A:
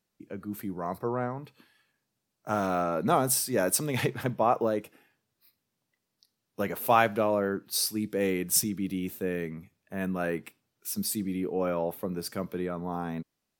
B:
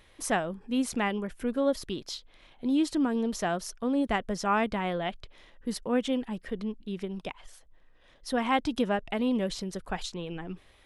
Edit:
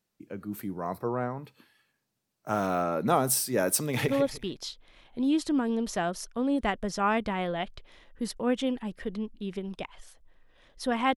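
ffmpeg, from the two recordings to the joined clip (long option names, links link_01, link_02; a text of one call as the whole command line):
ffmpeg -i cue0.wav -i cue1.wav -filter_complex "[0:a]apad=whole_dur=11.16,atrim=end=11.16,atrim=end=4.082[link_01];[1:a]atrim=start=1.538:end=8.62[link_02];[link_01][link_02]acrossfade=duration=0.004:curve1=hsin:curve2=hsin,asplit=2[link_03][link_04];[link_04]afade=type=in:start_time=3.78:duration=0.01,afade=type=out:start_time=4.08:duration=0.01,aecho=0:1:150|300|450:0.354813|0.106444|0.0319332[link_05];[link_03][link_05]amix=inputs=2:normalize=0" out.wav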